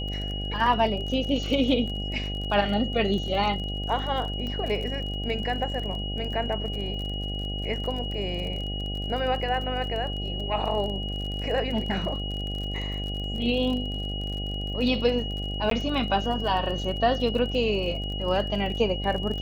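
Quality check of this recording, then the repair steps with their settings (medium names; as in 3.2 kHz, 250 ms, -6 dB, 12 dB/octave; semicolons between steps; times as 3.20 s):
buzz 50 Hz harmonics 16 -32 dBFS
crackle 36 per s -33 dBFS
whine 2.9 kHz -34 dBFS
4.47 s: pop -23 dBFS
15.70–15.71 s: dropout 13 ms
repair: de-click; band-stop 2.9 kHz, Q 30; de-hum 50 Hz, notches 16; interpolate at 15.70 s, 13 ms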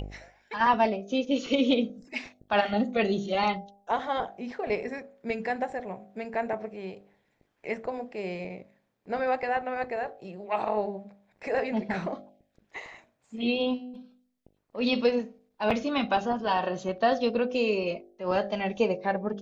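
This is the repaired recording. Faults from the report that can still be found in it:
nothing left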